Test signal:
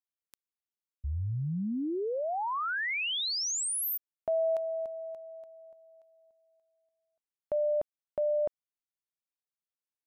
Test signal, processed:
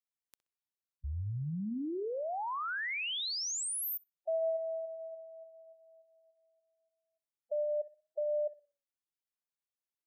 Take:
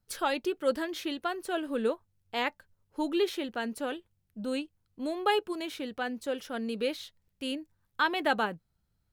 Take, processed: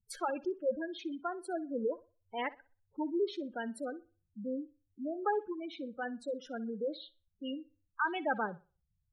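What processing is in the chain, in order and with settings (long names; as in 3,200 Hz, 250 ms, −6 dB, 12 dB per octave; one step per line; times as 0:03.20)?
gate on every frequency bin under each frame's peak −10 dB strong
tape delay 61 ms, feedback 31%, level −18 dB, low-pass 5,100 Hz
level −4 dB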